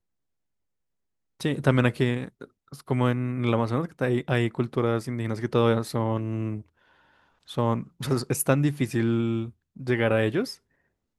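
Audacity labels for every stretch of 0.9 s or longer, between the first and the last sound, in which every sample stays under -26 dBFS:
6.560000	7.570000	silence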